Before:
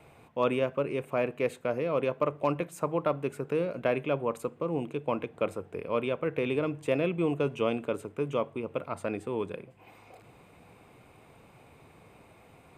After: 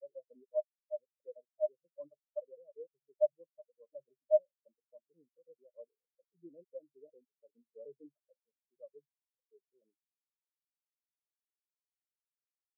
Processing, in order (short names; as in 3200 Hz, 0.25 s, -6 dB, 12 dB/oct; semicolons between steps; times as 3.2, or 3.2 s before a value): slices in reverse order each 0.151 s, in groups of 6; small resonant body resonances 610/1800/2700 Hz, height 7 dB, ringing for 95 ms; spectral expander 4:1; gain -4.5 dB